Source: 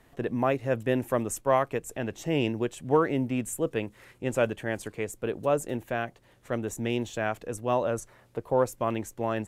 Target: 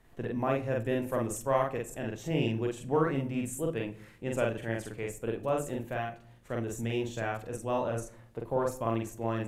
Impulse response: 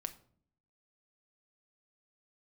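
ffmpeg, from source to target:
-filter_complex "[0:a]lowshelf=f=110:g=6.5,asplit=2[a][b];[1:a]atrim=start_sample=2205,adelay=44[c];[b][c]afir=irnorm=-1:irlink=0,volume=1dB[d];[a][d]amix=inputs=2:normalize=0,volume=-6.5dB"

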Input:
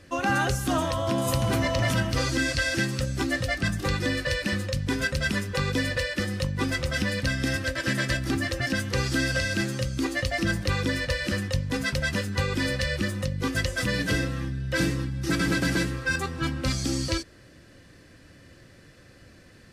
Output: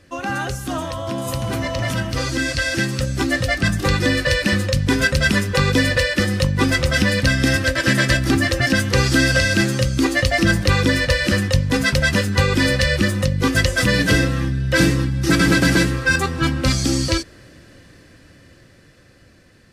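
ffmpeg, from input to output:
-af "dynaudnorm=f=670:g=9:m=10dB"

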